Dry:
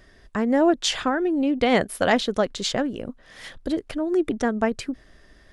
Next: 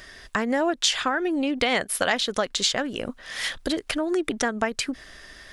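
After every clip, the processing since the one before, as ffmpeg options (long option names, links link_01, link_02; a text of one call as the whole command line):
ffmpeg -i in.wav -af "tiltshelf=frequency=800:gain=-7,acompressor=threshold=-31dB:ratio=3,volume=7.5dB" out.wav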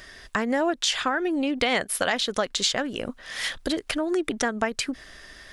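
ffmpeg -i in.wav -af "alimiter=level_in=8.5dB:limit=-1dB:release=50:level=0:latency=1,volume=-9dB" out.wav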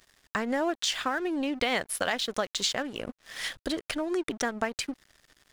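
ffmpeg -i in.wav -af "aeval=exprs='sgn(val(0))*max(abs(val(0))-0.00794,0)':channel_layout=same,volume=-3.5dB" out.wav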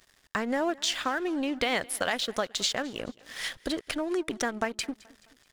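ffmpeg -i in.wav -af "aecho=1:1:214|428|642:0.0668|0.0314|0.0148" out.wav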